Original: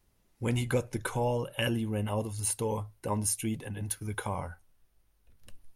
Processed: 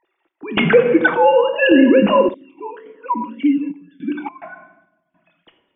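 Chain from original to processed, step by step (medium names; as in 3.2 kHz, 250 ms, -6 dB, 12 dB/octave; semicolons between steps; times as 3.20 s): formants replaced by sine waves; simulated room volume 450 m³, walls mixed, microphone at 0.71 m; random-step tremolo, depth 90%; loudness maximiser +22.5 dB; 2.34–4.42 s: talking filter i-u 1.8 Hz; trim -1 dB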